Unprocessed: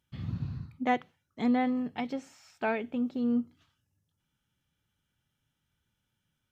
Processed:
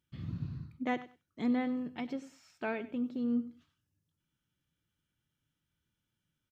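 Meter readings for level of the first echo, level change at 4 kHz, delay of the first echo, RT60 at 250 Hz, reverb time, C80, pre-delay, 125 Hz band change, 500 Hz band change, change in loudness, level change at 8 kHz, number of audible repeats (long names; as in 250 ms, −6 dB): −16.0 dB, −5.0 dB, 97 ms, no reverb audible, no reverb audible, no reverb audible, no reverb audible, −4.0 dB, −5.0 dB, −4.5 dB, can't be measured, 2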